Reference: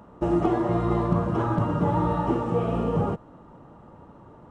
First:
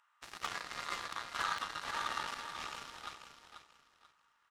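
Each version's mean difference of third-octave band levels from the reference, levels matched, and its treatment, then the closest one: 16.0 dB: inverse Chebyshev high-pass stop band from 340 Hz, stop band 70 dB; added harmonics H 5 -42 dB, 7 -15 dB, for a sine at -29.5 dBFS; on a send: feedback echo 0.488 s, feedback 28%, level -8 dB; on the sum: gain +7 dB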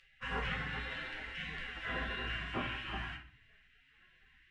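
11.5 dB: three-band isolator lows -21 dB, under 390 Hz, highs -22 dB, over 3400 Hz; spectral gate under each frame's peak -25 dB weak; shoebox room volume 41 m³, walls mixed, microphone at 0.82 m; gain +7 dB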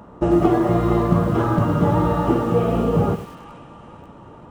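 3.0 dB: thin delay 0.434 s, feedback 54%, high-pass 1800 Hz, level -8.5 dB; dynamic EQ 930 Hz, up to -5 dB, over -44 dBFS, Q 5.4; lo-fi delay 99 ms, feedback 35%, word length 7-bit, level -13 dB; gain +6 dB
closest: third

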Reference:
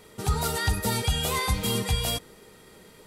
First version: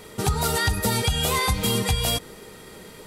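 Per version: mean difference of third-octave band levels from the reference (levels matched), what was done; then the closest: 2.0 dB: compressor, threshold -27 dBFS, peak gain reduction 8 dB; gain +8 dB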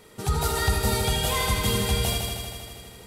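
5.0 dB: multi-head echo 79 ms, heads first and second, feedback 70%, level -8 dB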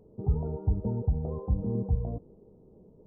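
19.0 dB: Gaussian blur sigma 15 samples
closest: first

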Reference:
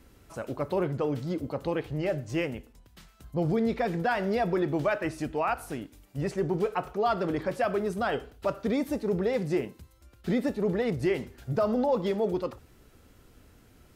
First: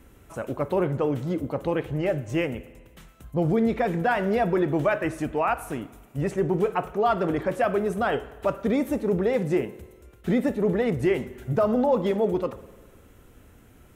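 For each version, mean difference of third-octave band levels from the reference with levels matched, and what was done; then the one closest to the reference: 2.0 dB: bell 4700 Hz -10.5 dB 0.56 oct; spring tank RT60 1.5 s, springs 49 ms, chirp 45 ms, DRR 17 dB; gain +4 dB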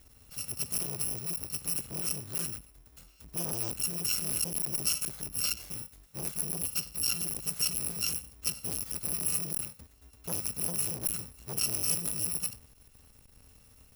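12.0 dB: FFT order left unsorted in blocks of 128 samples; core saturation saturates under 2000 Hz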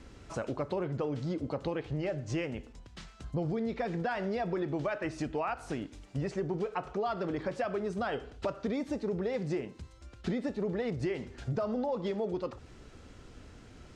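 4.0 dB: compressor 4:1, threshold -37 dBFS, peak gain reduction 13.5 dB; LPF 7500 Hz 24 dB/oct; gain +5 dB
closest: first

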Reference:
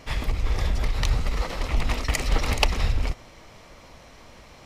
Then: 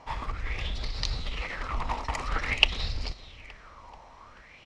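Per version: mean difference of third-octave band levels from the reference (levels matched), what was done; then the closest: 7.0 dB: Bessel low-pass 6800 Hz, order 8; feedback echo 0.435 s, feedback 52%, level -19 dB; LFO bell 0.5 Hz 890–4700 Hz +17 dB; gain -9.5 dB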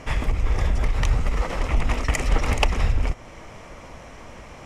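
3.0 dB: in parallel at +2 dB: compressor, threshold -31 dBFS, peak gain reduction 15.5 dB; on the sum: LPF 9300 Hz 12 dB/oct; bell 4200 Hz -11 dB 0.67 oct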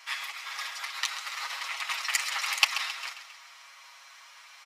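15.0 dB: HPF 1100 Hz 24 dB/oct; comb 7.3 ms; feedback echo 0.134 s, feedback 51%, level -11.5 dB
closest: second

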